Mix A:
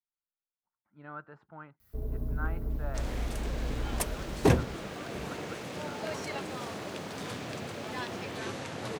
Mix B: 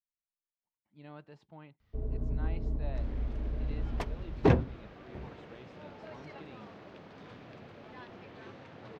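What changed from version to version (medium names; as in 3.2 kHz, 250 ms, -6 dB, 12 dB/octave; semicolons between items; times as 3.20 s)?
speech: remove resonant low-pass 1.4 kHz, resonance Q 7; second sound -10.5 dB; master: add distance through air 240 m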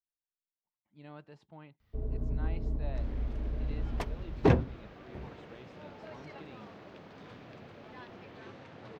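master: add treble shelf 10 kHz +6 dB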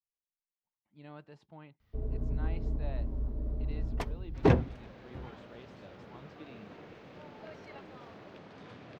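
second sound: entry +1.40 s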